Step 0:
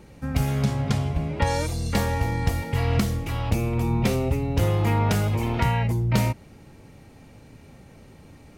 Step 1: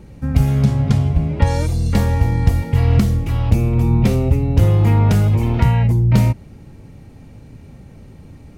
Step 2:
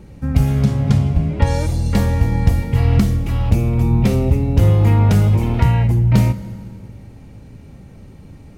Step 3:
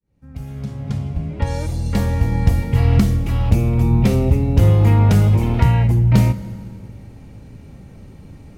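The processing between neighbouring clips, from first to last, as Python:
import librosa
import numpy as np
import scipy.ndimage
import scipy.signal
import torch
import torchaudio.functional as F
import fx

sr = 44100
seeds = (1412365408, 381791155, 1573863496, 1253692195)

y1 = fx.low_shelf(x, sr, hz=300.0, db=11.0)
y2 = fx.rev_fdn(y1, sr, rt60_s=2.1, lf_ratio=1.25, hf_ratio=0.85, size_ms=31.0, drr_db=13.0)
y3 = fx.fade_in_head(y2, sr, length_s=2.71)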